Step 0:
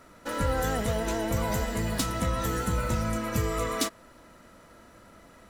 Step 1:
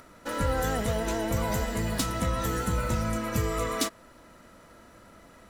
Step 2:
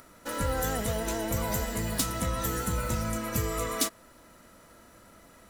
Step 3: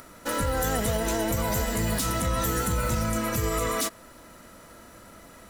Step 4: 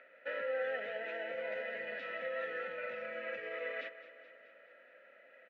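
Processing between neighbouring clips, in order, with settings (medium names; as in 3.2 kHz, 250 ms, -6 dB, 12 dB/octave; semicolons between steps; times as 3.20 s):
upward compressor, threshold -50 dBFS
treble shelf 7 kHz +10 dB; trim -2.5 dB
peak limiter -23 dBFS, peak gain reduction 10 dB; trim +6 dB
vowel filter e; cabinet simulation 330–3200 Hz, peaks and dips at 330 Hz -8 dB, 470 Hz -7 dB, 1.4 kHz +8 dB, 2.2 kHz +6 dB; feedback delay 213 ms, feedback 60%, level -14.5 dB; trim +1.5 dB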